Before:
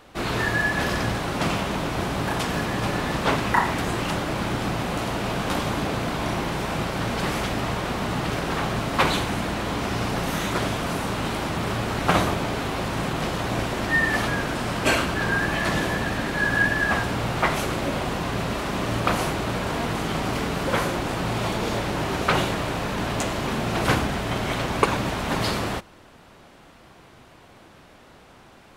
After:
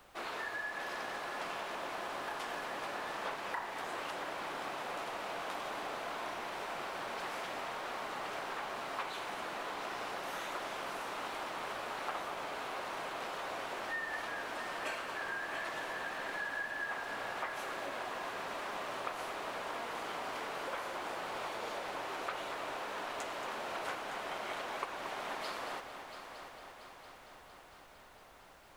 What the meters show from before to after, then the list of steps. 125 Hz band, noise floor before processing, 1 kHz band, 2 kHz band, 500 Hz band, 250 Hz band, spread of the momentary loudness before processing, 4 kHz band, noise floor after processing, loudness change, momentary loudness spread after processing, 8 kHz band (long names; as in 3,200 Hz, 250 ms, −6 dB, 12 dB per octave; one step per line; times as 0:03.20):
−33.5 dB, −50 dBFS, −12.0 dB, −14.0 dB, −14.5 dB, −24.0 dB, 5 LU, −14.5 dB, −56 dBFS, −15.0 dB, 4 LU, −16.0 dB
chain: high-pass filter 610 Hz 12 dB per octave
high-shelf EQ 2,600 Hz −7.5 dB
downward compressor 4 to 1, threshold −31 dBFS, peak gain reduction 12.5 dB
background noise pink −59 dBFS
echo machine with several playback heads 228 ms, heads first and third, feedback 68%, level −11.5 dB
level −7 dB